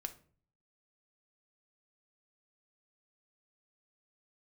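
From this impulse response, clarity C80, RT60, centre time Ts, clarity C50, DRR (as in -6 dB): 20.0 dB, 0.45 s, 6 ms, 15.0 dB, 6.0 dB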